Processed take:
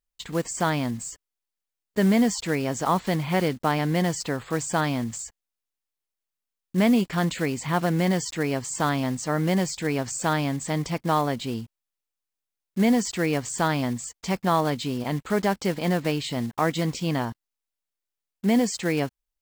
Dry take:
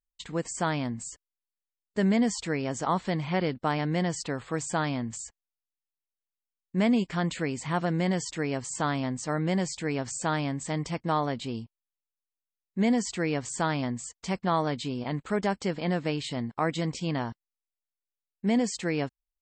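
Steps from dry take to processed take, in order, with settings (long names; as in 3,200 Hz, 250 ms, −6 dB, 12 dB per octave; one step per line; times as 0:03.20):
one scale factor per block 5 bits
level +4 dB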